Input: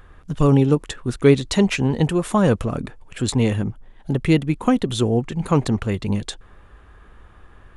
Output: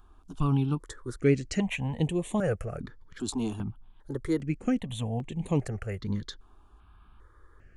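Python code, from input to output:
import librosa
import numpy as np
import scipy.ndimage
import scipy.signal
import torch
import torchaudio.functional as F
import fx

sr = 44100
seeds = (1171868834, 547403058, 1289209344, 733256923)

y = fx.phaser_held(x, sr, hz=2.5, low_hz=520.0, high_hz=5000.0)
y = y * 10.0 ** (-8.0 / 20.0)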